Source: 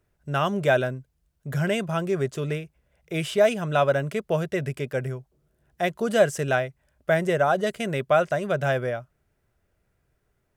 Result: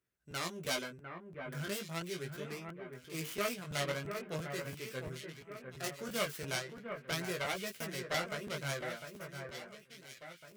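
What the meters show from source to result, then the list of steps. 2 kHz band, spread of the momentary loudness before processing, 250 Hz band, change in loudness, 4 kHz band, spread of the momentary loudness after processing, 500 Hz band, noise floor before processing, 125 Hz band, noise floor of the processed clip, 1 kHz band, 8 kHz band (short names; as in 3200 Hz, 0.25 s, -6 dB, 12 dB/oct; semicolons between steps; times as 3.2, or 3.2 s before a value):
-11.0 dB, 11 LU, -14.0 dB, -14.5 dB, -4.5 dB, 12 LU, -17.5 dB, -73 dBFS, -15.0 dB, -60 dBFS, -15.5 dB, -2.5 dB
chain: tracing distortion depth 0.48 ms; HPF 350 Hz 6 dB/oct; bell 700 Hz -10 dB 1.5 oct; chorus 0.39 Hz, delay 15.5 ms, depth 6 ms; on a send: echo with dull and thin repeats by turns 0.702 s, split 2100 Hz, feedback 64%, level -6.5 dB; on the sum: crackling interface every 0.34 s, samples 512, repeat, from 0.3; gain -6 dB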